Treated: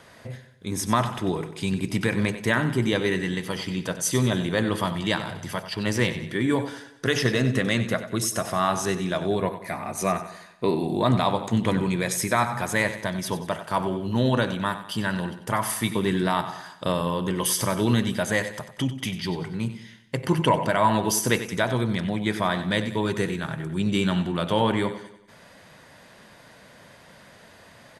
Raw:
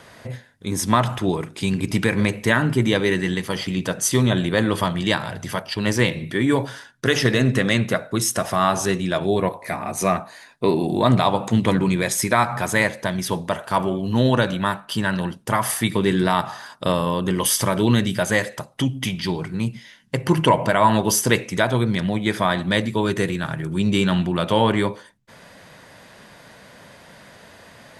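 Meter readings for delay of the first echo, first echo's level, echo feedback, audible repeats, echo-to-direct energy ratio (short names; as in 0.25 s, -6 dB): 94 ms, -12.5 dB, 47%, 4, -11.5 dB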